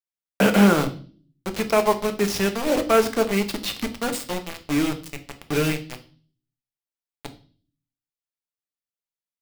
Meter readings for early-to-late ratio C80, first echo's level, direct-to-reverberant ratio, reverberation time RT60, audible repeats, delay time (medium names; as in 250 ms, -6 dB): 19.0 dB, no echo, 6.0 dB, 0.40 s, no echo, no echo